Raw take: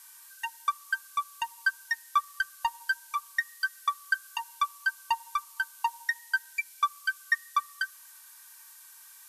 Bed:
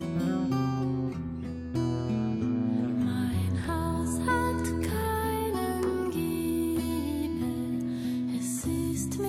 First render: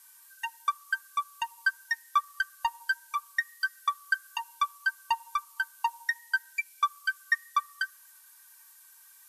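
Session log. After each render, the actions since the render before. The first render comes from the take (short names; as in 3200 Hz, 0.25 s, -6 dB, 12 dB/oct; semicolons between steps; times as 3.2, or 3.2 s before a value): denoiser 6 dB, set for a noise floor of -52 dBFS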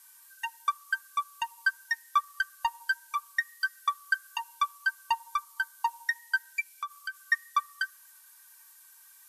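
5.18–5.86 notch 2700 Hz, Q 9.4; 6.73–7.23 compressor, threshold -32 dBFS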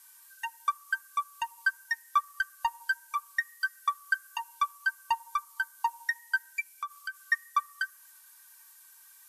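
dynamic EQ 3800 Hz, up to -5 dB, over -49 dBFS, Q 1.3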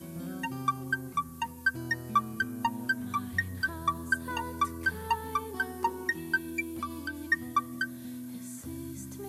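add bed -10.5 dB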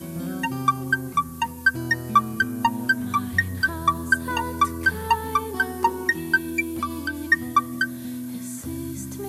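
gain +8.5 dB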